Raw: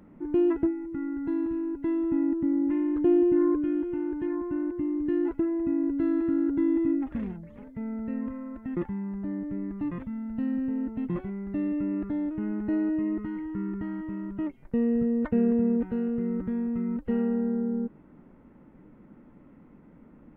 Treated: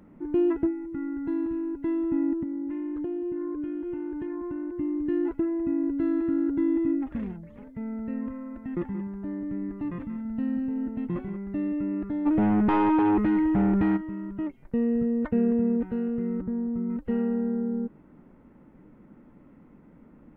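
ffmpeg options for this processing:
-filter_complex "[0:a]asettb=1/sr,asplit=3[s0][s1][s2];[s0]atrim=end=2.434[s3];[s1]atrim=start=2.43:end=4.73,asetpts=PTS-STARTPTS,afade=t=in:d=0.004:c=qsin,afade=t=out:st=2.296:d=0.004:c=qsin,acompressor=threshold=0.0355:ratio=6:attack=3.2:release=140:knee=1:detection=peak[s4];[s2]atrim=start=4.726[s5];[s3][s4]acrossfade=d=0.004:c1=hsin:c2=qsin[s6];[s6][s5]acrossfade=d=0.004:c1=qsin:c2=hsin,asplit=3[s7][s8][s9];[s7]afade=t=out:st=8.49:d=0.02[s10];[s8]aecho=1:1:180:0.266,afade=t=in:st=8.49:d=0.02,afade=t=out:st=11.36:d=0.02[s11];[s9]afade=t=in:st=11.36:d=0.02[s12];[s10][s11][s12]amix=inputs=3:normalize=0,asplit=3[s13][s14][s15];[s13]afade=t=out:st=12.25:d=0.02[s16];[s14]aeval=exprs='0.119*sin(PI/2*2.82*val(0)/0.119)':c=same,afade=t=in:st=12.25:d=0.02,afade=t=out:st=13.96:d=0.02[s17];[s15]afade=t=in:st=13.96:d=0.02[s18];[s16][s17][s18]amix=inputs=3:normalize=0,asettb=1/sr,asplit=3[s19][s20][s21];[s19]atrim=end=16.414[s22];[s20]atrim=start=16.41:end=16.9,asetpts=PTS-STARTPTS,afade=t=in:d=0.004:c=qsin,afade=t=out:st=0.486:d=0.004:c=qsin,lowpass=1100[s23];[s21]atrim=start=16.896[s24];[s22][s23]acrossfade=d=0.004:c1=hsin:c2=qsin[s25];[s25][s24]acrossfade=d=0.004:c1=qsin:c2=hsin"

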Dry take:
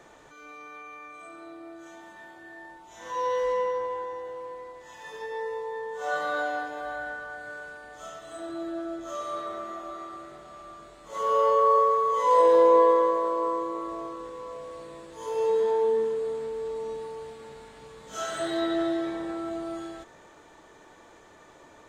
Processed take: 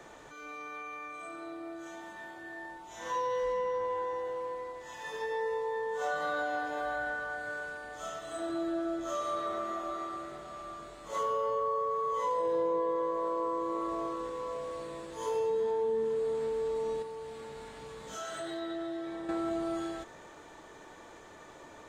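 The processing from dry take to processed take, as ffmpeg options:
-filter_complex "[0:a]asettb=1/sr,asplit=3[s0][s1][s2];[s0]atrim=end=17.024[s3];[s1]atrim=start=17.02:end=19.29,asetpts=PTS-STARTPTS,afade=t=in:d=0.004:c=qsin,afade=t=out:st=2.266:d=0.004:c=qsin,acompressor=threshold=0.00794:ratio=2.5:attack=3.2:release=140:knee=1:detection=peak[s4];[s2]atrim=start=19.286[s5];[s3][s4]acrossfade=d=0.004:c1=hsin:c2=qsin[s6];[s6][s5]acrossfade=d=0.004:c1=qsin:c2=hsin,acrossover=split=230[s7][s8];[s8]acompressor=threshold=0.0282:ratio=10[s9];[s7][s9]amix=inputs=2:normalize=0,volume=1.19"

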